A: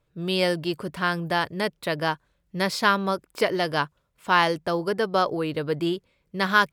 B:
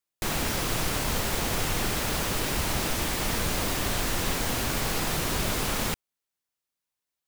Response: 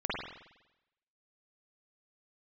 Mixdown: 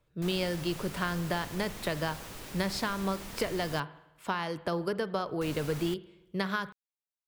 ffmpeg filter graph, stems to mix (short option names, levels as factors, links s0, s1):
-filter_complex "[0:a]alimiter=limit=0.299:level=0:latency=1:release=325,acrossover=split=170[s0][s1];[s1]acompressor=threshold=0.0398:ratio=6[s2];[s0][s2]amix=inputs=2:normalize=0,volume=0.841,asplit=2[s3][s4];[s4]volume=0.0841[s5];[1:a]volume=0.158,asplit=3[s6][s7][s8];[s6]atrim=end=3.8,asetpts=PTS-STARTPTS,afade=t=out:st=3.796:d=0.004:c=hsin[s9];[s7]atrim=start=3.8:end=5.41,asetpts=PTS-STARTPTS,volume=0[s10];[s8]atrim=start=5.41,asetpts=PTS-STARTPTS,afade=t=in:d=0.004:c=hsin[s11];[s9][s10][s11]concat=n=3:v=0:a=1[s12];[2:a]atrim=start_sample=2205[s13];[s5][s13]afir=irnorm=-1:irlink=0[s14];[s3][s12][s14]amix=inputs=3:normalize=0"